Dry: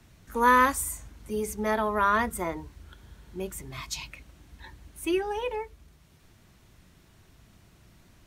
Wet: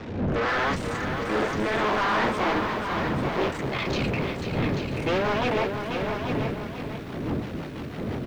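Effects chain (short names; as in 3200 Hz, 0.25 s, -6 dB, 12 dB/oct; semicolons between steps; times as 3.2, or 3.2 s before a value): cycle switcher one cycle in 2, muted; wind noise 160 Hz -39 dBFS; in parallel at -2 dB: negative-ratio compressor -30 dBFS; on the sum: flange 1.1 Hz, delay 6.6 ms, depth 9.4 ms, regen -53%; rotary speaker horn 0.8 Hz, later 6 Hz, at 3.93; overdrive pedal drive 36 dB, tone 5400 Hz, clips at -12.5 dBFS; air absorption 190 m; echo 0.837 s -7 dB; lo-fi delay 0.49 s, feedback 35%, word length 8-bit, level -7 dB; gain -4 dB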